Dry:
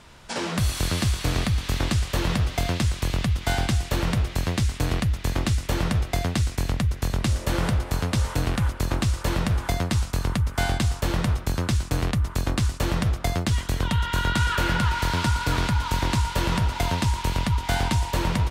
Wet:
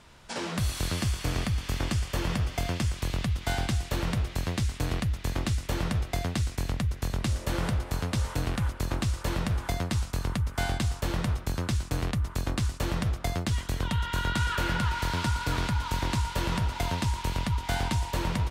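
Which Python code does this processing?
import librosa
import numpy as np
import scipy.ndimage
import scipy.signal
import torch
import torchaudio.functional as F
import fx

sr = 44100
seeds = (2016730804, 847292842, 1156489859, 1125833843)

y = fx.notch(x, sr, hz=3900.0, q=11.0, at=(0.95, 2.98))
y = F.gain(torch.from_numpy(y), -5.0).numpy()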